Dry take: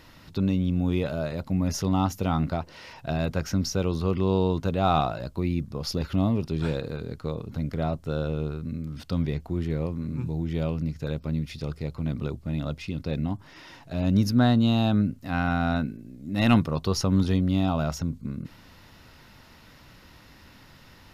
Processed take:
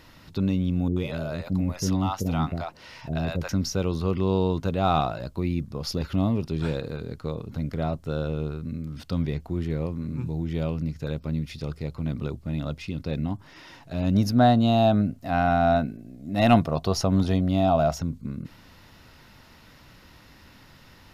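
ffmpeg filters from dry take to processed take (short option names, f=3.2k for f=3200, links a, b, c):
-filter_complex "[0:a]asettb=1/sr,asplit=3[a][b][c];[a]atrim=end=0.884[d];[b]atrim=start=0.88:end=3.49,asetpts=PTS-STARTPTS,afade=t=in:d=0.004:c=qsin,afade=t=out:st=2.606:d=0.004:c=qsin,acrossover=split=540[e][f];[f]adelay=80[g];[e][g]amix=inputs=2:normalize=0,atrim=end_sample=115101[h];[c]atrim=start=3.486[i];[d][h]acrossfade=d=0.004:c1=hsin:c2=qsin[j];[j][i]acrossfade=d=0.004:c1=qsin:c2=hsin,asettb=1/sr,asplit=3[k][l][m];[k]atrim=end=14.154[n];[l]atrim=start=14.15:end=18,asetpts=PTS-STARTPTS,afade=t=in:d=0.004:c=qsin,afade=t=out:st=3.846:d=0.004:c=qsin,equalizer=f=680:t=o:w=0.38:g=13[o];[m]atrim=start=17.996[p];[n][o]acrossfade=d=0.004:c1=hsin:c2=qsin[q];[q][p]acrossfade=d=0.004:c1=qsin:c2=hsin"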